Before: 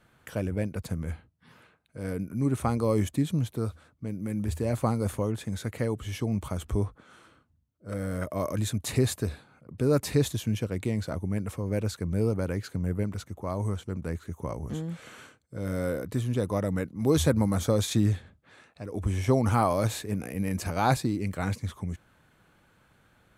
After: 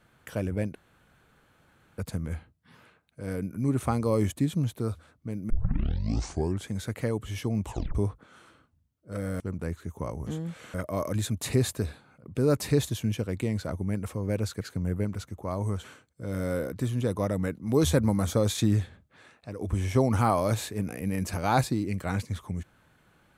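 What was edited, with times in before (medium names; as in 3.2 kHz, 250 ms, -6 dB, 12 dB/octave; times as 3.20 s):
0.75 s: insert room tone 1.23 s
4.27 s: tape start 1.20 s
6.42 s: tape stop 0.30 s
12.04–12.60 s: delete
13.83–15.17 s: move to 8.17 s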